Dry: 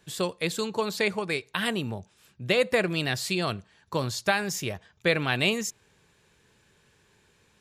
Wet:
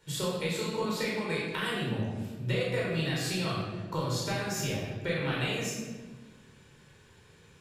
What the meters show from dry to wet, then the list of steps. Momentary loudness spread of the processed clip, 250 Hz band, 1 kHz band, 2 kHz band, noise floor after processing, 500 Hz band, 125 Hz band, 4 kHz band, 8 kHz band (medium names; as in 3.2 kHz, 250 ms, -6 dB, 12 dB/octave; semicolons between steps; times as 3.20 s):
5 LU, -2.0 dB, -4.5 dB, -6.5 dB, -58 dBFS, -5.0 dB, +1.5 dB, -4.5 dB, -3.0 dB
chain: compression, threshold -33 dBFS, peak gain reduction 14 dB; simulated room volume 1000 m³, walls mixed, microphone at 4.6 m; trim -4.5 dB